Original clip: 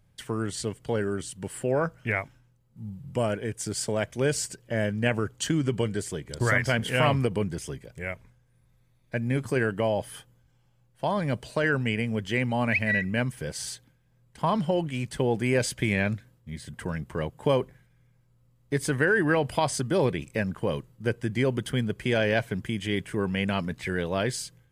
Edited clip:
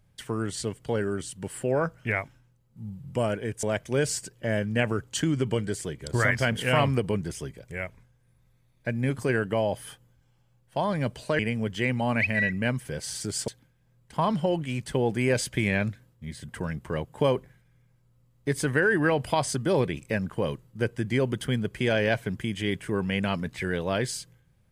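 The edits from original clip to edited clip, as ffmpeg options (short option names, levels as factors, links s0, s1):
-filter_complex "[0:a]asplit=5[s0][s1][s2][s3][s4];[s0]atrim=end=3.632[s5];[s1]atrim=start=3.898:end=11.662[s6];[s2]atrim=start=11.908:end=13.732[s7];[s3]atrim=start=3.628:end=3.902[s8];[s4]atrim=start=13.728[s9];[s5][s6]acrossfade=d=0.004:c1=hsin:c2=hsin[s10];[s10][s7]acrossfade=d=0.004:c1=hsin:c2=hsin[s11];[s11][s8]acrossfade=d=0.004:c1=hsin:c2=hsin[s12];[s12][s9]acrossfade=d=0.004:c1=hsin:c2=hsin"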